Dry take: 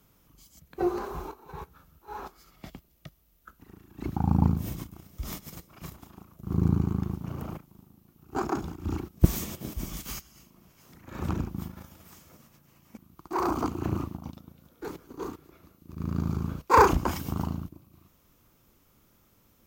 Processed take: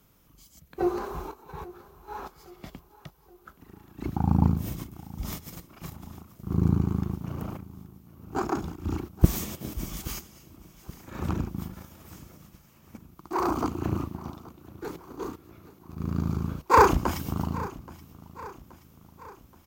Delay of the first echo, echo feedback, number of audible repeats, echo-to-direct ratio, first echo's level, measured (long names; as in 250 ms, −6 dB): 826 ms, 53%, 3, −17.5 dB, −19.0 dB